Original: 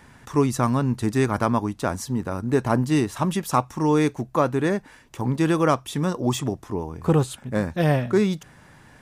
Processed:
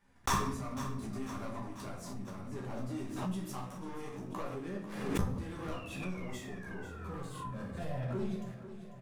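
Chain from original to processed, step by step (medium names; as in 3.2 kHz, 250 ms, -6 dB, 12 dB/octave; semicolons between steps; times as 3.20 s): gate -42 dBFS, range -56 dB; waveshaping leveller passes 3; painted sound fall, 5.72–7.46 s, 1–2.9 kHz -25 dBFS; inverted gate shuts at -16 dBFS, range -31 dB; chorus voices 4, 1.4 Hz, delay 13 ms, depth 3 ms; on a send: feedback delay 494 ms, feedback 59%, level -12 dB; on the sum: simulated room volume 170 m³, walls mixed, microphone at 1.2 m; swell ahead of each attack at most 47 dB/s; trim +1 dB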